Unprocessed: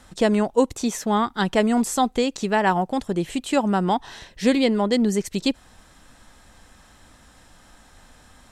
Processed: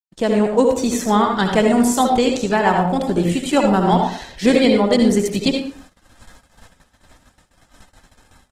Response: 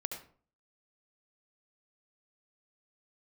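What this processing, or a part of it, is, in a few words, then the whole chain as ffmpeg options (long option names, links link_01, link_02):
speakerphone in a meeting room: -filter_complex "[1:a]atrim=start_sample=2205[link_01];[0:a][link_01]afir=irnorm=-1:irlink=0,asplit=2[link_02][link_03];[link_03]adelay=120,highpass=300,lowpass=3400,asoftclip=type=hard:threshold=-15.5dB,volume=-18dB[link_04];[link_02][link_04]amix=inputs=2:normalize=0,dynaudnorm=framelen=130:gausssize=5:maxgain=7dB,agate=range=-56dB:threshold=-41dB:ratio=16:detection=peak" -ar 48000 -c:a libopus -b:a 16k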